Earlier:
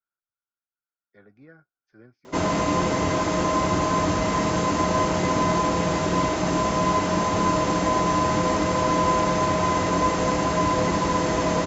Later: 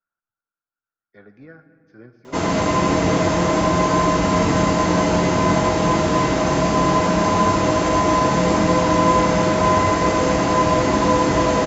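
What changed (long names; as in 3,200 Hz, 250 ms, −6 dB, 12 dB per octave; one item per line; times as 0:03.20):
speech +6.0 dB
reverb: on, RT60 2.5 s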